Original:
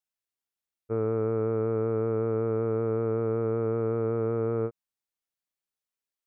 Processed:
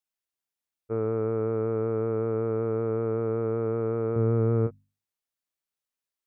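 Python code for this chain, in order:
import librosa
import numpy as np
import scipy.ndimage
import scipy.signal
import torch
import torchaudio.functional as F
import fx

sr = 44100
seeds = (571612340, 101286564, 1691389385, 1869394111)

y = fx.bass_treble(x, sr, bass_db=10, treble_db=-5, at=(4.16, 4.67))
y = fx.hum_notches(y, sr, base_hz=50, count=5)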